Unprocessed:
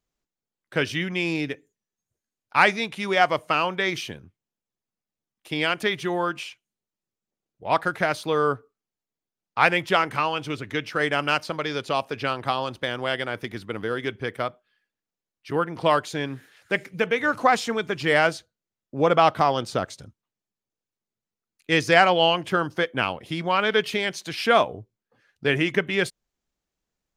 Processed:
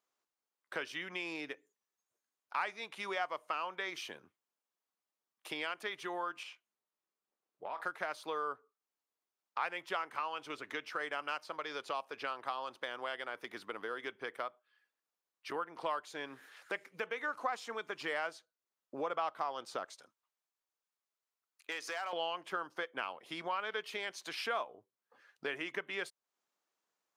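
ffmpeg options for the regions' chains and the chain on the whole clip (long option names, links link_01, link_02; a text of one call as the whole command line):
ffmpeg -i in.wav -filter_complex "[0:a]asettb=1/sr,asplit=3[link_01][link_02][link_03];[link_01]atrim=end=6.434[link_04];[link_02]atrim=start=6.43:end=7.8,asetpts=PTS-STARTPTS,afade=type=in:duration=0.004:curve=qsin,afade=type=out:start_time=1.366:duration=0.004:curve=qsin,highshelf=frequency=4700:gain=-7.5,acompressor=threshold=-31dB:ratio=6:attack=3.2:release=140:knee=1:detection=peak,asplit=2[link_05][link_06];[link_06]adelay=27,volume=-9dB[link_07];[link_05][link_07]amix=inputs=2:normalize=0,atrim=end_sample=60417[link_08];[link_03]atrim=start=7.796[link_09];[link_04][link_08]acrossfade=duration=0.004:curve1=hsin:curve2=qsin[link_10];[link_10][link_09]acrossfade=duration=0.004:curve1=qsin:curve2=hsin,asettb=1/sr,asplit=3[link_11][link_12][link_13];[link_11]atrim=end=19.934[link_14];[link_12]atrim=start=19.93:end=22.13,asetpts=PTS-STARTPTS,afade=type=in:duration=0.004:curve=qsin,afade=type=out:start_time=2.196:duration=0.004:curve=qsin,acompressor=threshold=-24dB:ratio=2.5:attack=3.2:release=140:knee=1:detection=peak,asoftclip=type=hard:threshold=-19.5dB,highpass=frequency=670:poles=1[link_15];[link_13]atrim=start=22.126[link_16];[link_14][link_15]acrossfade=duration=0.004:curve1=hsin:curve2=qsin[link_17];[link_17][link_16]acrossfade=duration=0.004:curve1=qsin:curve2=hsin,highpass=390,equalizer=frequency=1100:width=1.5:gain=6.5,acompressor=threshold=-40dB:ratio=2.5,volume=-2.5dB" out.wav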